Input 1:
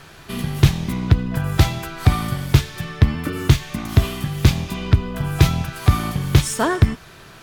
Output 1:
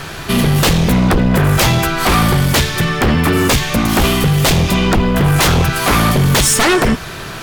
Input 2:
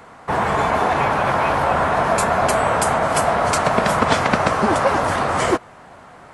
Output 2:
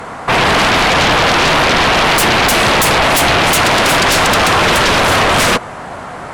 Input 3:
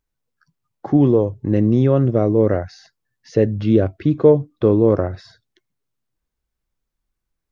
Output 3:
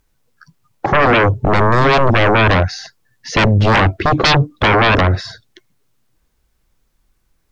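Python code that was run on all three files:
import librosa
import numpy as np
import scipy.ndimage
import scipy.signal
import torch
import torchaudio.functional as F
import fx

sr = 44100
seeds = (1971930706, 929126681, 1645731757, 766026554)

y = fx.fold_sine(x, sr, drive_db=19, ceiling_db=-1.0)
y = y * librosa.db_to_amplitude(-7.0)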